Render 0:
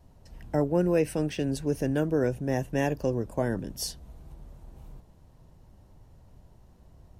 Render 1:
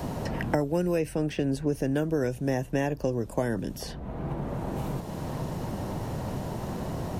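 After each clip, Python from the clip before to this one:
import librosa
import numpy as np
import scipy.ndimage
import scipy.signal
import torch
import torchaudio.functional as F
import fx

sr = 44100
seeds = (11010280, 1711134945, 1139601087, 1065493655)

y = fx.band_squash(x, sr, depth_pct=100)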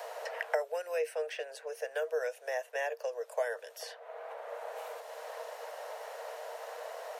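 y = scipy.signal.sosfilt(scipy.signal.cheby1(6, 6, 450.0, 'highpass', fs=sr, output='sos'), x)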